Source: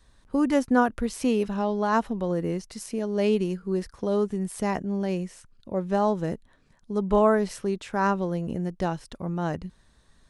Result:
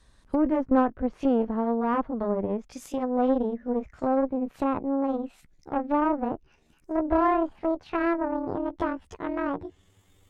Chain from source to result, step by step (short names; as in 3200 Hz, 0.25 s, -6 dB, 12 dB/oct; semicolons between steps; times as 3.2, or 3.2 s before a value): gliding pitch shift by +11.5 st starting unshifted; added harmonics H 8 -20 dB, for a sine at -7.5 dBFS; treble ducked by the level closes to 1100 Hz, closed at -23 dBFS